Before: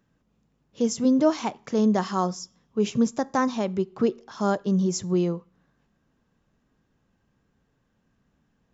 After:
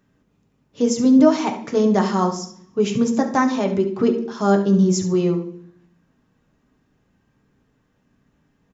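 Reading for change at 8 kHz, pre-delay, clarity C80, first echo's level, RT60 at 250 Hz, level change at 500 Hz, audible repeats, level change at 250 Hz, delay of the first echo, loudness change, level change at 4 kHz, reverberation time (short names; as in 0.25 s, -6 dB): n/a, 3 ms, 13.0 dB, -12.5 dB, 0.90 s, +6.5 dB, 1, +6.5 dB, 70 ms, +6.0 dB, +4.5 dB, 0.60 s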